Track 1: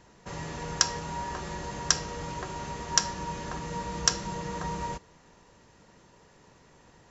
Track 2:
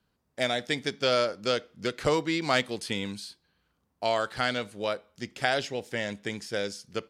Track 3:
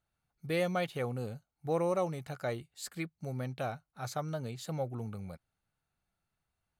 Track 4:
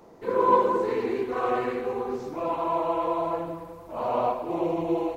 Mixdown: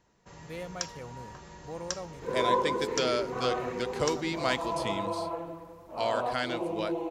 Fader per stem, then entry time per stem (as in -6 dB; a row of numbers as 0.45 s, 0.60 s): -11.5 dB, -4.5 dB, -9.0 dB, -6.5 dB; 0.00 s, 1.95 s, 0.00 s, 2.00 s